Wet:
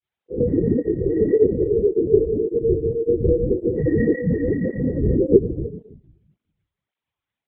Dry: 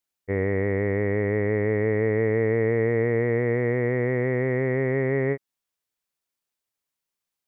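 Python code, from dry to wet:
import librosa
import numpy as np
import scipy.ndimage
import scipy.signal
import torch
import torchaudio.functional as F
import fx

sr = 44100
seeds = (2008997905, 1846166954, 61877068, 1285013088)

y = fx.spec_gate(x, sr, threshold_db=-10, keep='strong')
y = fx.highpass(y, sr, hz=190.0, slope=12, at=(1.31, 2.23))
y = fx.chorus_voices(y, sr, voices=2, hz=0.46, base_ms=16, depth_ms=3.6, mix_pct=65)
y = y + 10.0 ** (-17.0 / 20.0) * np.pad(y, (int(318 * sr / 1000.0), 0))[:len(y)]
y = fx.room_shoebox(y, sr, seeds[0], volume_m3=150.0, walls='mixed', distance_m=3.9)
y = fx.lpc_vocoder(y, sr, seeds[1], excitation='whisper', order=10)
y = fx.flanger_cancel(y, sr, hz=1.8, depth_ms=5.1)
y = F.gain(torch.from_numpy(y), -2.5).numpy()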